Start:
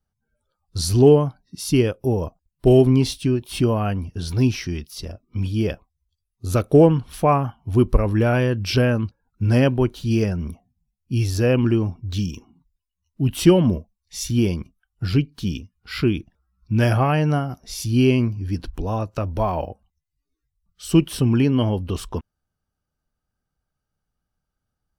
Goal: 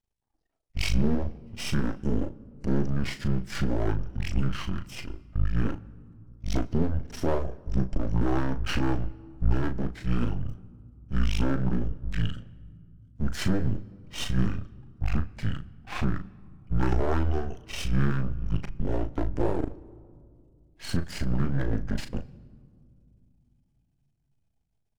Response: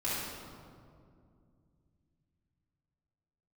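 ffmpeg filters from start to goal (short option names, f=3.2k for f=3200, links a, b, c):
-filter_complex "[0:a]alimiter=limit=-13.5dB:level=0:latency=1:release=205,asetrate=23361,aresample=44100,atempo=1.88775,aeval=exprs='max(val(0),0)':c=same,asplit=2[a][b];[b]adelay=37,volume=-9dB[c];[a][c]amix=inputs=2:normalize=0,asplit=2[d][e];[1:a]atrim=start_sample=2205[f];[e][f]afir=irnorm=-1:irlink=0,volume=-25.5dB[g];[d][g]amix=inputs=2:normalize=0"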